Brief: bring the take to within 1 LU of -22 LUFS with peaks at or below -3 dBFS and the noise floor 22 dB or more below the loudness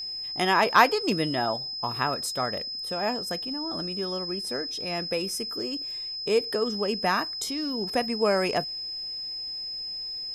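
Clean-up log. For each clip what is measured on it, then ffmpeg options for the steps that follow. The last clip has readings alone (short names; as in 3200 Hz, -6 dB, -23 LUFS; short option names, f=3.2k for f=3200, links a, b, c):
steady tone 5100 Hz; tone level -32 dBFS; loudness -27.0 LUFS; peak -4.5 dBFS; loudness target -22.0 LUFS
-> -af "bandreject=f=5.1k:w=30"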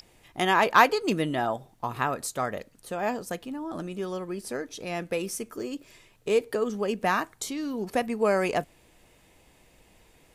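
steady tone none; loudness -28.0 LUFS; peak -4.5 dBFS; loudness target -22.0 LUFS
-> -af "volume=6dB,alimiter=limit=-3dB:level=0:latency=1"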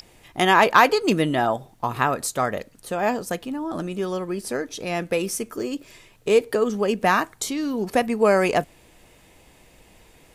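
loudness -22.5 LUFS; peak -3.0 dBFS; noise floor -54 dBFS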